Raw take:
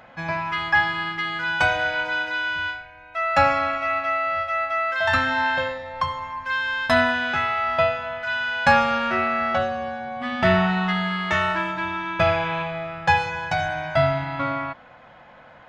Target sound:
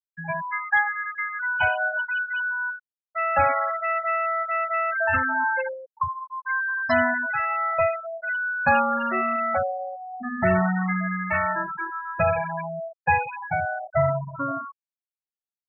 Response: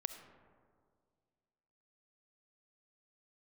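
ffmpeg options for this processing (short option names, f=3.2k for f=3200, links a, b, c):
-af "asoftclip=type=tanh:threshold=-11dB,afftfilt=real='re*gte(hypot(re,im),0.178)':imag='im*gte(hypot(re,im),0.178)':win_size=1024:overlap=0.75"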